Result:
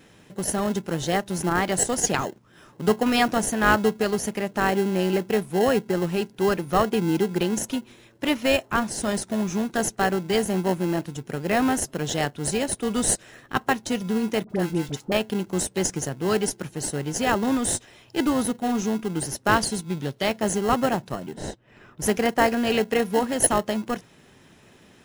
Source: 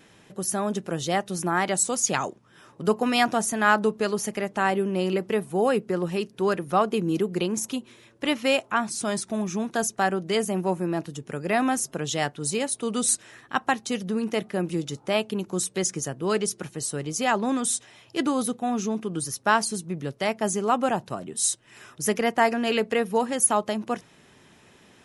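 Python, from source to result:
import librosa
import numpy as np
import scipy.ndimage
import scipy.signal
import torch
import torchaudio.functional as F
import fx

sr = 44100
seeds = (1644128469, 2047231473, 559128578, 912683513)

p1 = fx.sample_hold(x, sr, seeds[0], rate_hz=1200.0, jitter_pct=0)
p2 = x + (p1 * 10.0 ** (-7.0 / 20.0))
p3 = fx.spacing_loss(p2, sr, db_at_10k=26, at=(21.33, 22.01), fade=0.02)
p4 = fx.quant_float(p3, sr, bits=4)
p5 = fx.dispersion(p4, sr, late='highs', ms=56.0, hz=890.0, at=(14.44, 15.12))
y = fx.peak_eq(p5, sr, hz=3600.0, db=6.0, octaves=0.65, at=(19.56, 20.38))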